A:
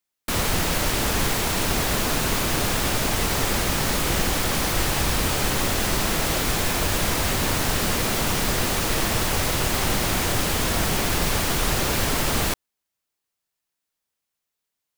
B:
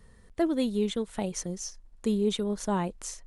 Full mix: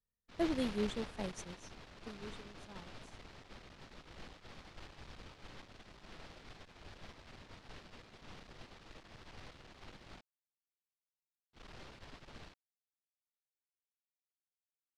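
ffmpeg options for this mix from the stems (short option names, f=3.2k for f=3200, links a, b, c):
-filter_complex "[0:a]lowpass=f=4.8k:w=0.5412,lowpass=f=4.8k:w=1.3066,aeval=exprs='(tanh(15.8*val(0)+0.5)-tanh(0.5))/15.8':c=same,volume=-14dB,asplit=3[a][b][c];[a]atrim=end=10.21,asetpts=PTS-STARTPTS,afade=t=out:st=10.206:d=0.004:c=hsin[d];[b]atrim=start=10.21:end=11.53,asetpts=PTS-STARTPTS,volume=0[e];[c]atrim=start=11.53,asetpts=PTS-STARTPTS,afade=t=in:d=0.004:c=hsin[f];[d][e][f]concat=n=3:v=0:a=1[g];[1:a]volume=-7.5dB,afade=t=out:st=1.41:d=0.54:silence=0.334965[h];[g][h]amix=inputs=2:normalize=0,agate=range=-33dB:threshold=-32dB:ratio=3:detection=peak"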